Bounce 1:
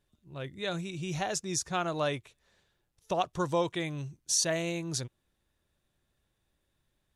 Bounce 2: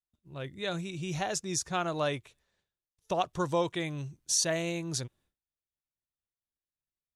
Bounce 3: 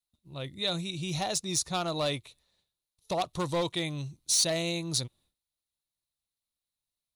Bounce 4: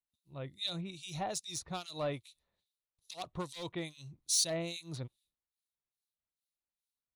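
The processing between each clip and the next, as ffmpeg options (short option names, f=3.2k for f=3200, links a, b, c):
-af "agate=range=-33dB:threshold=-60dB:ratio=3:detection=peak"
-af "volume=25.5dB,asoftclip=hard,volume=-25.5dB,equalizer=f=400:t=o:w=0.33:g=-4,equalizer=f=1.6k:t=o:w=0.33:g=-9,equalizer=f=4k:t=o:w=0.33:g=12,equalizer=f=10k:t=o:w=0.33:g=9,volume=1.5dB"
-filter_complex "[0:a]acrossover=split=2400[a][b];[a]aeval=exprs='val(0)*(1-1/2+1/2*cos(2*PI*2.4*n/s))':c=same[c];[b]aeval=exprs='val(0)*(1-1/2-1/2*cos(2*PI*2.4*n/s))':c=same[d];[c][d]amix=inputs=2:normalize=0,volume=-3.5dB"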